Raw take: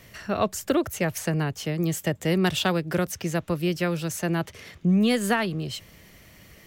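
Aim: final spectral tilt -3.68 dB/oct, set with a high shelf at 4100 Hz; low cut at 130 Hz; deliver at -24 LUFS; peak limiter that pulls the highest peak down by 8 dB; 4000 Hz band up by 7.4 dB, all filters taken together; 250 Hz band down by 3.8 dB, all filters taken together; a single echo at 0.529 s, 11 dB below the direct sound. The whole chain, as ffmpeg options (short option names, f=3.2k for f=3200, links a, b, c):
-af "highpass=130,equalizer=f=250:t=o:g=-5,equalizer=f=4k:t=o:g=5,highshelf=f=4.1k:g=8.5,alimiter=limit=-16dB:level=0:latency=1,aecho=1:1:529:0.282,volume=2.5dB"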